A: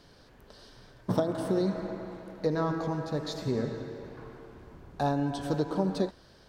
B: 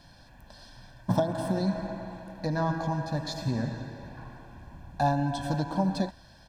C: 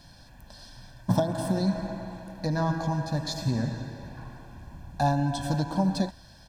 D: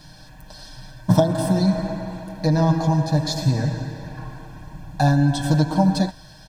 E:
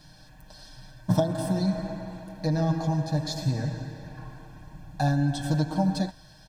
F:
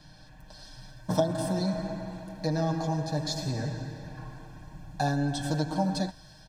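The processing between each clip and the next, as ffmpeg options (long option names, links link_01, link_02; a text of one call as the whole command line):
ffmpeg -i in.wav -af "aecho=1:1:1.2:0.87" out.wav
ffmpeg -i in.wav -af "bass=frequency=250:gain=3,treble=frequency=4000:gain=6" out.wav
ffmpeg -i in.wav -af "aecho=1:1:6.5:0.65,volume=5.5dB" out.wav
ffmpeg -i in.wav -af "bandreject=frequency=980:width=19,volume=-7dB" out.wav
ffmpeg -i in.wav -filter_complex "[0:a]highshelf=frequency=8900:gain=-11.5,acrossover=split=250|5100[link_01][link_02][link_03];[link_01]asoftclip=type=tanh:threshold=-30dB[link_04];[link_03]dynaudnorm=framelen=400:gausssize=3:maxgain=6.5dB[link_05];[link_04][link_02][link_05]amix=inputs=3:normalize=0" out.wav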